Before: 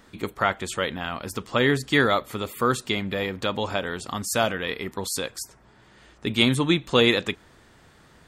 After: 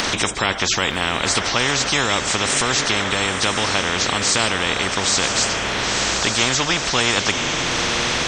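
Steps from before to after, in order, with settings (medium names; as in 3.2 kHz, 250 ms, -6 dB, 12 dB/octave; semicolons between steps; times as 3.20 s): knee-point frequency compression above 3.1 kHz 1.5:1; upward compressor, threshold -26 dBFS; echo that smears into a reverb 982 ms, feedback 54%, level -15 dB; spectrum-flattening compressor 4:1; trim +3.5 dB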